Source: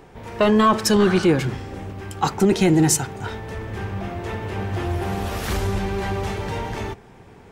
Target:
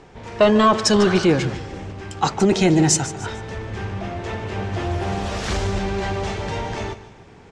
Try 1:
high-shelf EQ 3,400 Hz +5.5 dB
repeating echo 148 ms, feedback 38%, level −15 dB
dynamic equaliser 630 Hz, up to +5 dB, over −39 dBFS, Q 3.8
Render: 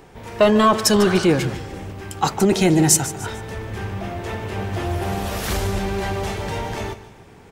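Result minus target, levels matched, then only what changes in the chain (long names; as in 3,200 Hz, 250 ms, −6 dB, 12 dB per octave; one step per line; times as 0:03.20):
8,000 Hz band +2.5 dB
add first: low-pass filter 7,300 Hz 24 dB per octave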